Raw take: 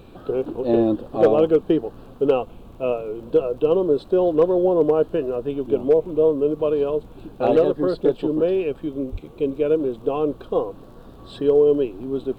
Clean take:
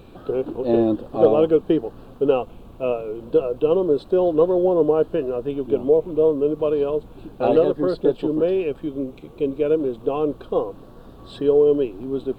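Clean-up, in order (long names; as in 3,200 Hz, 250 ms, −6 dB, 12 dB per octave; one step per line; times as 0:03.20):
clipped peaks rebuilt −8 dBFS
click removal
high-pass at the plosives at 0:09.11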